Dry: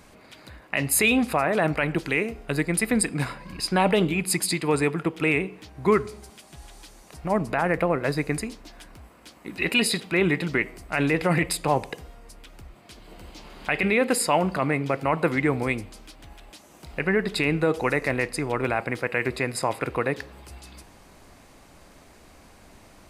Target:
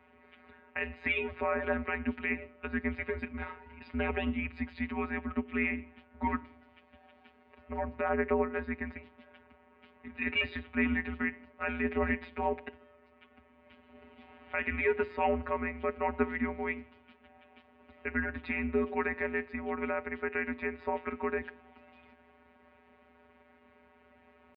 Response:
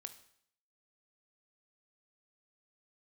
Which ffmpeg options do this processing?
-af "atempo=0.94,afftfilt=real='hypot(re,im)*cos(PI*b)':imag='0':win_size=1024:overlap=0.75,highpass=frequency=220:width_type=q:width=0.5412,highpass=frequency=220:width_type=q:width=1.307,lowpass=frequency=2900:width_type=q:width=0.5176,lowpass=frequency=2900:width_type=q:width=0.7071,lowpass=frequency=2900:width_type=q:width=1.932,afreqshift=-100,volume=-4dB"

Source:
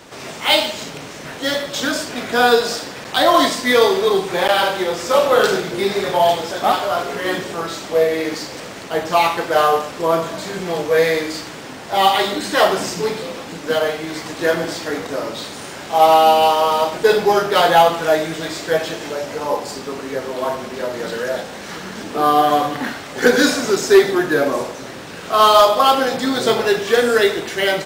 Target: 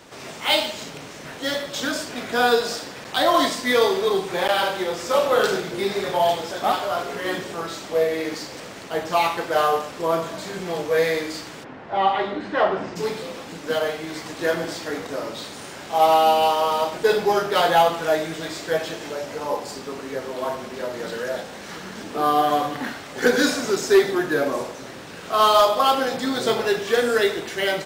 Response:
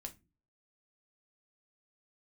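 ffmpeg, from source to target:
-filter_complex "[0:a]asplit=3[link_01][link_02][link_03];[link_01]afade=type=out:start_time=11.63:duration=0.02[link_04];[link_02]lowpass=2000,afade=type=in:start_time=11.63:duration=0.02,afade=type=out:start_time=12.95:duration=0.02[link_05];[link_03]afade=type=in:start_time=12.95:duration=0.02[link_06];[link_04][link_05][link_06]amix=inputs=3:normalize=0,volume=-5dB"

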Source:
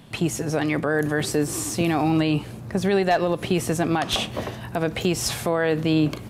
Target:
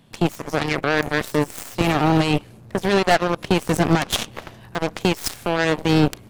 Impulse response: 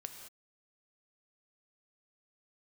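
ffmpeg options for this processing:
-filter_complex "[0:a]asettb=1/sr,asplit=3[link_01][link_02][link_03];[link_01]atrim=end=3.694[link_04];[link_02]atrim=start=3.69:end=4.32,asetpts=PTS-STARTPTS,afade=type=in:duration=0.004:curve=qsin,afade=type=out:start_time=0.626:duration=0.004:curve=qsin,equalizer=frequency=160:width_type=o:width=0.77:gain=5[link_05];[link_03]atrim=start=4.316[link_06];[link_04][link_05]acrossfade=duration=0.004:curve1=hsin:curve2=qsin[link_07];[link_07][link_06]acrossfade=duration=0.004:curve1=qsin:curve2=hsin,aeval=exprs='0.355*(cos(1*acos(clip(val(0)/0.355,-1,1)))-cos(1*PI/2))+0.0398*(cos(4*acos(clip(val(0)/0.355,-1,1)))-cos(4*PI/2))+0.00501*(cos(5*acos(clip(val(0)/0.355,-1,1)))-cos(5*PI/2))+0.0708*(cos(7*acos(clip(val(0)/0.355,-1,1)))-cos(7*PI/2))':channel_layout=same,volume=3dB"

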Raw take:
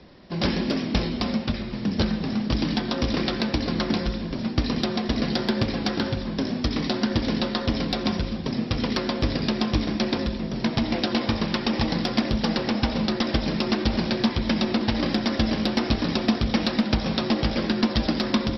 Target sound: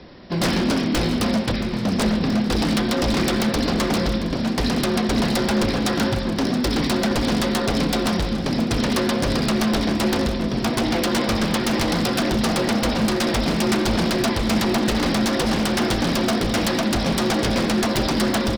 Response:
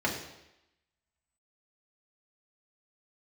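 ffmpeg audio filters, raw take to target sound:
-filter_complex "[0:a]aeval=exprs='0.0841*(abs(mod(val(0)/0.0841+3,4)-2)-1)':channel_layout=same,aecho=1:1:675|1350|2025|2700|3375:0.188|0.102|0.0549|0.0297|0.016,asplit=2[link_01][link_02];[1:a]atrim=start_sample=2205,asetrate=33516,aresample=44100[link_03];[link_02][link_03]afir=irnorm=-1:irlink=0,volume=-26dB[link_04];[link_01][link_04]amix=inputs=2:normalize=0,volume=6dB"

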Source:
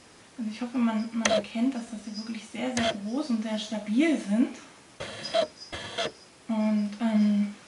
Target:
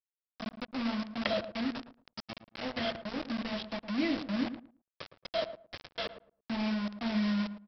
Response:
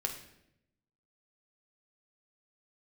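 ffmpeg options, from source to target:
-filter_complex "[0:a]bandreject=frequency=60:width_type=h:width=6,bandreject=frequency=120:width_type=h:width=6,bandreject=frequency=180:width_type=h:width=6,bandreject=frequency=240:width_type=h:width=6,bandreject=frequency=300:width_type=h:width=6,aresample=11025,acrusher=bits=4:mix=0:aa=0.000001,aresample=44100,asplit=2[link_01][link_02];[link_02]adelay=111,lowpass=frequency=960:poles=1,volume=-10dB,asplit=2[link_03][link_04];[link_04]adelay=111,lowpass=frequency=960:poles=1,volume=0.21,asplit=2[link_05][link_06];[link_06]adelay=111,lowpass=frequency=960:poles=1,volume=0.21[link_07];[link_01][link_03][link_05][link_07]amix=inputs=4:normalize=0,volume=-7.5dB"

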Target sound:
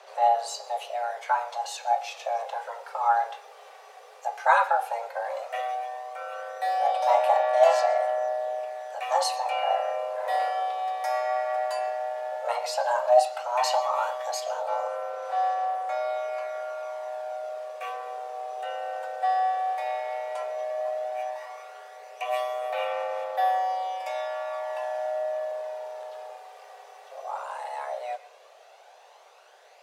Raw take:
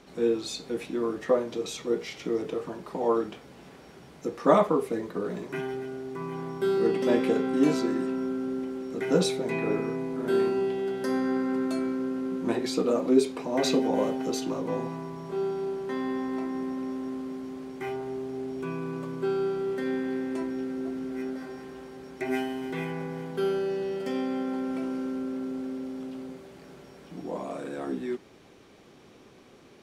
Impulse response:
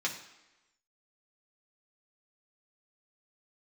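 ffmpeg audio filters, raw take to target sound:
-filter_complex "[0:a]afreqshift=360,aphaser=in_gain=1:out_gain=1:delay=2.6:decay=0.36:speed=0.13:type=sinusoidal,asplit=2[link_01][link_02];[1:a]atrim=start_sample=2205,adelay=113[link_03];[link_02][link_03]afir=irnorm=-1:irlink=0,volume=-23dB[link_04];[link_01][link_04]amix=inputs=2:normalize=0"

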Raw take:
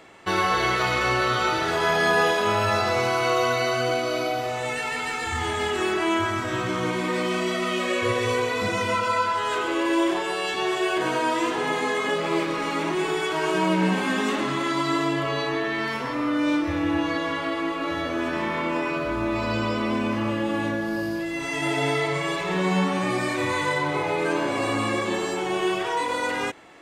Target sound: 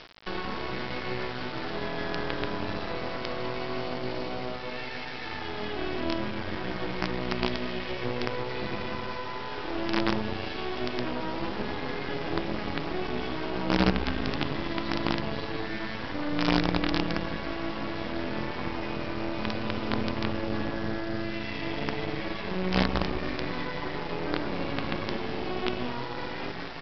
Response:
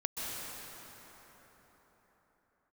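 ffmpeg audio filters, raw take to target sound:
-filter_complex "[0:a]highpass=150,bandreject=frequency=1300:width=8.3,areverse,acompressor=mode=upward:threshold=-28dB:ratio=2.5,areverse,asplit=6[link_01][link_02][link_03][link_04][link_05][link_06];[link_02]adelay=168,afreqshift=-120,volume=-5.5dB[link_07];[link_03]adelay=336,afreqshift=-240,volume=-13.9dB[link_08];[link_04]adelay=504,afreqshift=-360,volume=-22.3dB[link_09];[link_05]adelay=672,afreqshift=-480,volume=-30.7dB[link_10];[link_06]adelay=840,afreqshift=-600,volume=-39.1dB[link_11];[link_01][link_07][link_08][link_09][link_10][link_11]amix=inputs=6:normalize=0,acrossover=split=360[link_12][link_13];[link_13]acompressor=threshold=-31dB:ratio=6[link_14];[link_12][link_14]amix=inputs=2:normalize=0,aresample=11025,acrusher=bits=4:dc=4:mix=0:aa=0.000001,aresample=44100"

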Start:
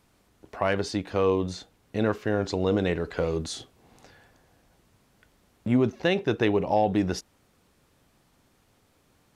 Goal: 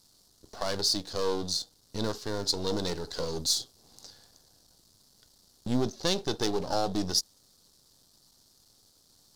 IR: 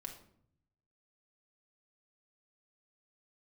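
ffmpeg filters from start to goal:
-af "aeval=exprs='if(lt(val(0),0),0.251*val(0),val(0))':channel_layout=same,highshelf=frequency=3300:width_type=q:width=3:gain=11.5,volume=-2dB"

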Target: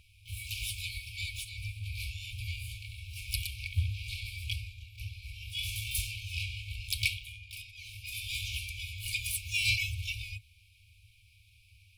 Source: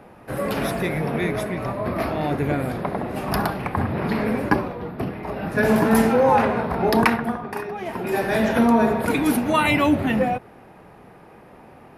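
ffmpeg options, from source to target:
ffmpeg -i in.wav -filter_complex "[0:a]asplit=4[link_01][link_02][link_03][link_04];[link_02]asetrate=37084,aresample=44100,atempo=1.18921,volume=-3dB[link_05];[link_03]asetrate=66075,aresample=44100,atempo=0.66742,volume=-17dB[link_06];[link_04]asetrate=88200,aresample=44100,atempo=0.5,volume=-8dB[link_07];[link_01][link_05][link_06][link_07]amix=inputs=4:normalize=0,afftfilt=real='re*(1-between(b*sr/4096,110,2200))':imag='im*(1-between(b*sr/4096,110,2200))':win_size=4096:overlap=0.75,volume=-4.5dB" out.wav

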